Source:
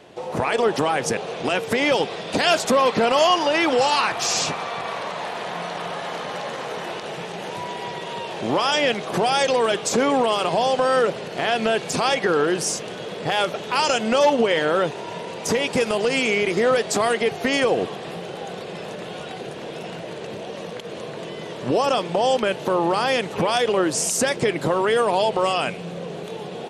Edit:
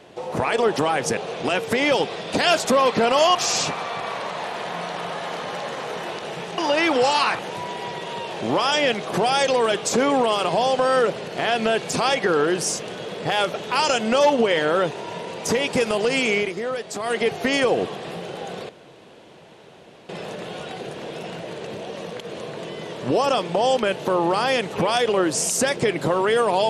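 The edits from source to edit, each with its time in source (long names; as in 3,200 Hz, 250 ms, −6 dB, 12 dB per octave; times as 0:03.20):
0:03.35–0:04.16: move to 0:07.39
0:16.38–0:17.18: duck −8.5 dB, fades 0.15 s
0:18.69: splice in room tone 1.40 s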